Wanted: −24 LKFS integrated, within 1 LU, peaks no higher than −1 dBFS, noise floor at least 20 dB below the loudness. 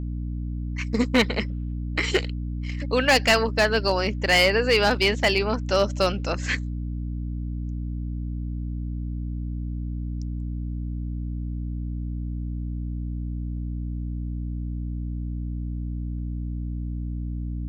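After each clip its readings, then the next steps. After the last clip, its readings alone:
share of clipped samples 0.2%; peaks flattened at −12.5 dBFS; mains hum 60 Hz; hum harmonics up to 300 Hz; level of the hum −27 dBFS; integrated loudness −26.0 LKFS; sample peak −12.5 dBFS; target loudness −24.0 LKFS
→ clipped peaks rebuilt −12.5 dBFS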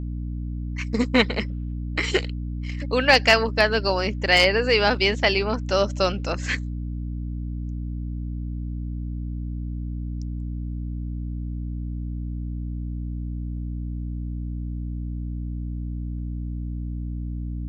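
share of clipped samples 0.0%; mains hum 60 Hz; hum harmonics up to 300 Hz; level of the hum −27 dBFS
→ hum removal 60 Hz, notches 5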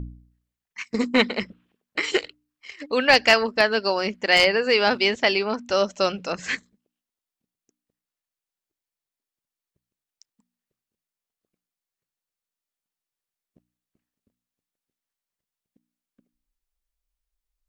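mains hum none found; integrated loudness −21.5 LKFS; sample peak −3.0 dBFS; target loudness −24.0 LKFS
→ level −2.5 dB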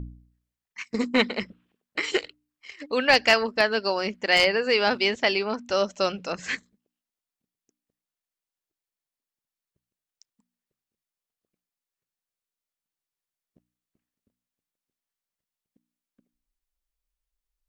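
integrated loudness −24.0 LKFS; sample peak −5.5 dBFS; background noise floor −91 dBFS

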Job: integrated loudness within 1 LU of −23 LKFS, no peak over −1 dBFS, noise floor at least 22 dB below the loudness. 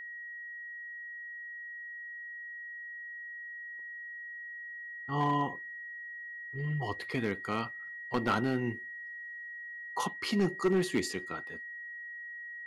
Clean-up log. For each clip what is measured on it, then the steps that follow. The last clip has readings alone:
share of clipped samples 0.4%; peaks flattened at −21.5 dBFS; interfering tone 1,900 Hz; level of the tone −41 dBFS; integrated loudness −36.0 LKFS; sample peak −21.5 dBFS; target loudness −23.0 LKFS
→ clipped peaks rebuilt −21.5 dBFS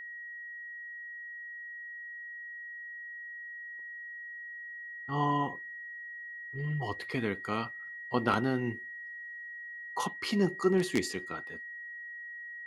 share of clipped samples 0.0%; interfering tone 1,900 Hz; level of the tone −41 dBFS
→ notch filter 1,900 Hz, Q 30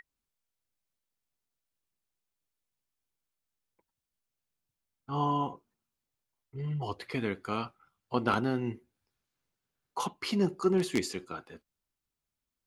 interfering tone none found; integrated loudness −32.5 LKFS; sample peak −13.0 dBFS; target loudness −23.0 LKFS
→ level +9.5 dB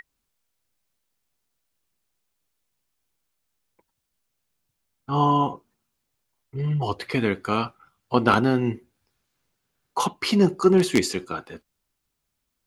integrated loudness −23.0 LKFS; sample peak −3.5 dBFS; background noise floor −79 dBFS

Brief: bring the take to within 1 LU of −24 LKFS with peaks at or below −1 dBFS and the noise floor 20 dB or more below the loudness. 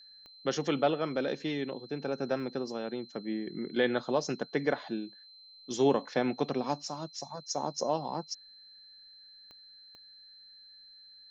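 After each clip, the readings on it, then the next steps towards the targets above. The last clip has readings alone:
number of clicks 4; interfering tone 4,100 Hz; level of the tone −52 dBFS; integrated loudness −33.0 LKFS; sample peak −15.0 dBFS; target loudness −24.0 LKFS
→ click removal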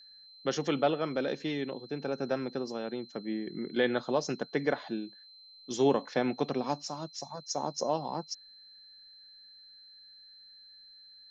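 number of clicks 0; interfering tone 4,100 Hz; level of the tone −52 dBFS
→ notch filter 4,100 Hz, Q 30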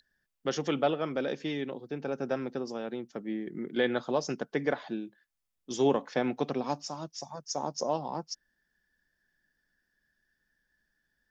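interfering tone none found; integrated loudness −33.0 LKFS; sample peak −15.0 dBFS; target loudness −24.0 LKFS
→ level +9 dB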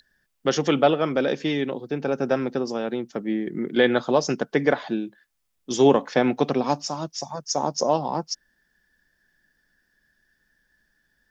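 integrated loudness −24.0 LKFS; sample peak −6.0 dBFS; background noise floor −72 dBFS

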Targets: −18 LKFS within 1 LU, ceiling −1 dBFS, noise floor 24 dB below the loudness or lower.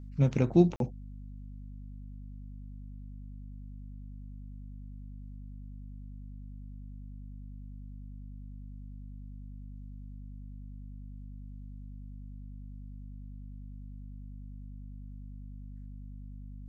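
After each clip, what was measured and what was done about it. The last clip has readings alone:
number of dropouts 1; longest dropout 42 ms; mains hum 50 Hz; hum harmonics up to 250 Hz; level of the hum −42 dBFS; integrated loudness −39.0 LKFS; sample peak −10.5 dBFS; target loudness −18.0 LKFS
→ repair the gap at 0:00.76, 42 ms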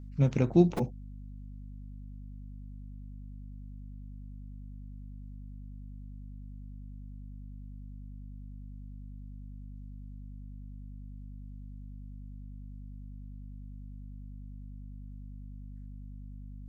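number of dropouts 0; mains hum 50 Hz; hum harmonics up to 250 Hz; level of the hum −42 dBFS
→ hum removal 50 Hz, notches 5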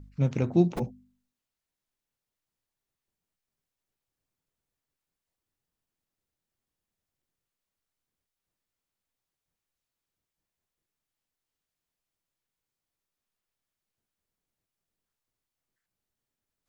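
mains hum none found; integrated loudness −27.0 LKFS; sample peak −10.5 dBFS; target loudness −18.0 LKFS
→ level +9 dB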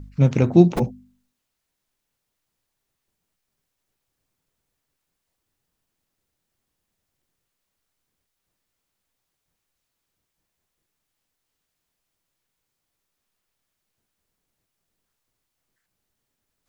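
integrated loudness −18.0 LKFS; sample peak −1.5 dBFS; background noise floor −80 dBFS

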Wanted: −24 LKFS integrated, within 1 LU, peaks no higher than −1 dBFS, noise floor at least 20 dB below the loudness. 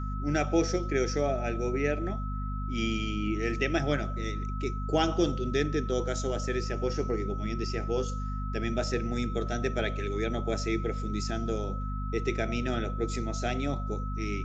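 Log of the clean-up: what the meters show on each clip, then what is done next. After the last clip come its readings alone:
mains hum 50 Hz; hum harmonics up to 250 Hz; level of the hum −31 dBFS; interfering tone 1,300 Hz; level of the tone −40 dBFS; integrated loudness −31.0 LKFS; sample peak −13.0 dBFS; target loudness −24.0 LKFS
→ hum removal 50 Hz, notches 5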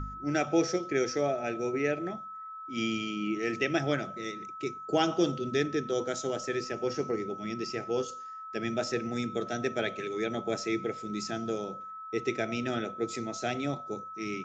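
mains hum none found; interfering tone 1,300 Hz; level of the tone −40 dBFS
→ notch filter 1,300 Hz, Q 30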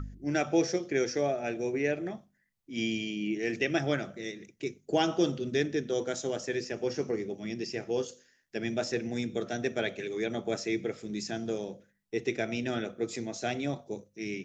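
interfering tone none found; integrated loudness −32.5 LKFS; sample peak −14.0 dBFS; target loudness −24.0 LKFS
→ level +8.5 dB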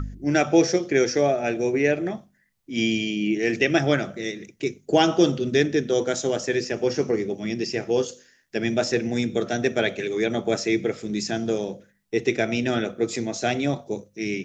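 integrated loudness −24.0 LKFS; sample peak −5.5 dBFS; background noise floor −64 dBFS

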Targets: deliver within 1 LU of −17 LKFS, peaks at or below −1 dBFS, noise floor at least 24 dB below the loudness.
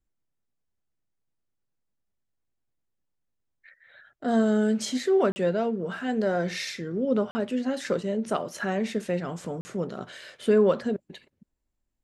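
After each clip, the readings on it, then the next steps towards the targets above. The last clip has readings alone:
number of dropouts 3; longest dropout 40 ms; integrated loudness −27.0 LKFS; sample peak −11.5 dBFS; target loudness −17.0 LKFS
→ repair the gap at 0:05.32/0:07.31/0:09.61, 40 ms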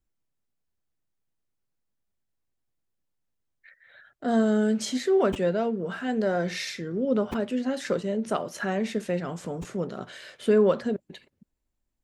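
number of dropouts 0; integrated loudness −27.0 LKFS; sample peak −11.5 dBFS; target loudness −17.0 LKFS
→ level +10 dB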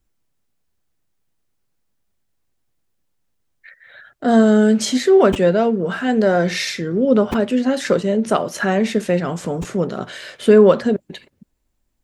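integrated loudness −17.0 LKFS; sample peak −1.5 dBFS; background noise floor −69 dBFS

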